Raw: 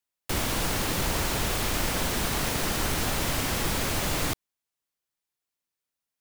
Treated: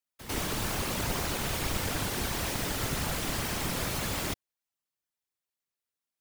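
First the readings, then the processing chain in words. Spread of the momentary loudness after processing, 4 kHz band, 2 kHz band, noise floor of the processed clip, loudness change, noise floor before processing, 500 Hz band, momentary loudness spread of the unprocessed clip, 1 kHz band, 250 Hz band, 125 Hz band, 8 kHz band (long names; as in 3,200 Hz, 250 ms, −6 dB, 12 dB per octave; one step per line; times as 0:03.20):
2 LU, −4.5 dB, −4.5 dB, below −85 dBFS, −4.0 dB, below −85 dBFS, −4.0 dB, 2 LU, −4.5 dB, −3.5 dB, −3.5 dB, −4.5 dB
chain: echo ahead of the sound 98 ms −13 dB
random phases in short frames
level −4.5 dB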